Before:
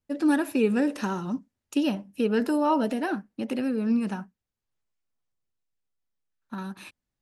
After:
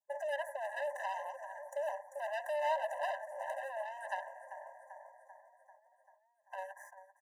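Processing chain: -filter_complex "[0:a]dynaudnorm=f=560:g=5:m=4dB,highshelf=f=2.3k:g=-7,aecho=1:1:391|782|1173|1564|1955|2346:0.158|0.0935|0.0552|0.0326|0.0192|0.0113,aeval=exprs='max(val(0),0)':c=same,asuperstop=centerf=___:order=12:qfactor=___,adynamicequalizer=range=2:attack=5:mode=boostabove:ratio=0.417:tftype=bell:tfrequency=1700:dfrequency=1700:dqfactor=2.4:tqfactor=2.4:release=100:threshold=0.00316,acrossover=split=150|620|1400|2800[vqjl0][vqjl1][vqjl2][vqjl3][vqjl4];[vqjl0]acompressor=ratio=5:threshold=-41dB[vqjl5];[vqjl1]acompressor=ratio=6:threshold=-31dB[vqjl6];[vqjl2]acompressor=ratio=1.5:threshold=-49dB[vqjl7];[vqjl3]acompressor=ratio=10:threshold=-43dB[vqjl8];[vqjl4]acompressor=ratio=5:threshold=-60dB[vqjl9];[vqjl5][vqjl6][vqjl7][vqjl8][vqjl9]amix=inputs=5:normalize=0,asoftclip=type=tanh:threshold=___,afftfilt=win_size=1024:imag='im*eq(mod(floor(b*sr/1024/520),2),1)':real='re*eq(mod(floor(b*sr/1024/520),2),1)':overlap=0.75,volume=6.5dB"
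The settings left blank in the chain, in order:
3400, 0.82, -32dB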